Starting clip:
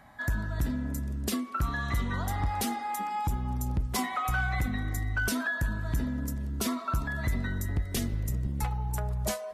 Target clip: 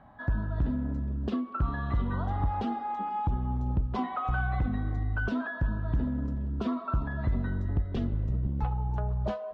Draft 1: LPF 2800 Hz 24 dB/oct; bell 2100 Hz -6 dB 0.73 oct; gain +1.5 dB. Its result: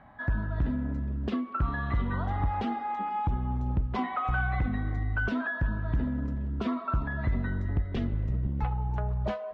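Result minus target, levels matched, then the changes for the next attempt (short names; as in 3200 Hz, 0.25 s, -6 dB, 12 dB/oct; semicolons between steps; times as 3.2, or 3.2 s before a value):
2000 Hz band +3.5 dB
change: bell 2100 Hz -14.5 dB 0.73 oct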